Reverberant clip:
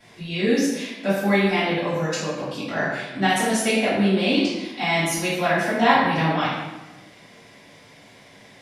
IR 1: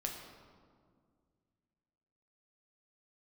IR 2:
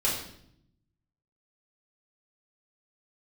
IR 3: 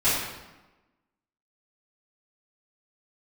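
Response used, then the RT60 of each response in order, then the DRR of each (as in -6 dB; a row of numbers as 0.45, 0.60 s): 3; 2.0, 0.70, 1.1 s; 0.5, -6.0, -16.0 dB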